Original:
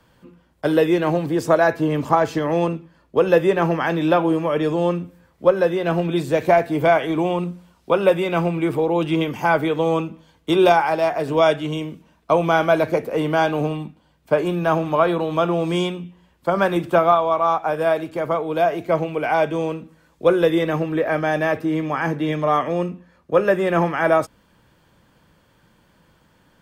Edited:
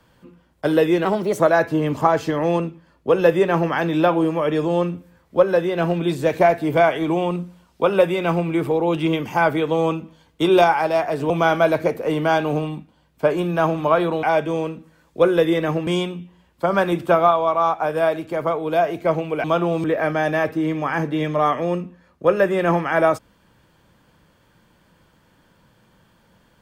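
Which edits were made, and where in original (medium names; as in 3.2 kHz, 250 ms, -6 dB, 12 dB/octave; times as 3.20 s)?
1.05–1.48 s: speed 123%
11.38–12.38 s: delete
15.31–15.71 s: swap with 19.28–20.92 s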